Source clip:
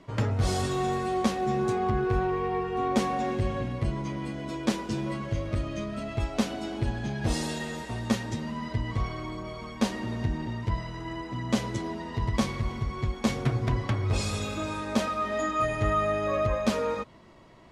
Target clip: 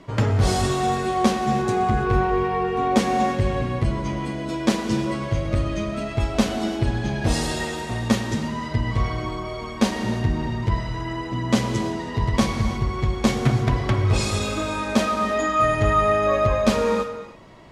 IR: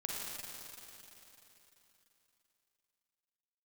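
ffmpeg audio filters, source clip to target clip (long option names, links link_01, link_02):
-filter_complex "[0:a]asplit=2[link_01][link_02];[1:a]atrim=start_sample=2205,afade=type=out:start_time=0.37:duration=0.01,atrim=end_sample=16758,asetrate=41454,aresample=44100[link_03];[link_02][link_03]afir=irnorm=-1:irlink=0,volume=-3.5dB[link_04];[link_01][link_04]amix=inputs=2:normalize=0,volume=3dB"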